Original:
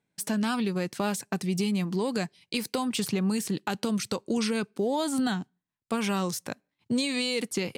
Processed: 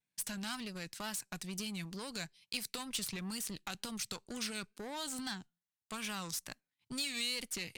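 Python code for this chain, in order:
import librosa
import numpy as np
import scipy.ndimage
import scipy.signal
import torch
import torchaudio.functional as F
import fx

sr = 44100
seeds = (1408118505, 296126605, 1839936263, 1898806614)

y = fx.wow_flutter(x, sr, seeds[0], rate_hz=2.1, depth_cents=92.0)
y = fx.cheby_harmonics(y, sr, harmonics=(8,), levels_db=(-22,), full_scale_db=-14.0)
y = fx.tone_stack(y, sr, knobs='5-5-5')
y = F.gain(torch.from_numpy(y), 1.5).numpy()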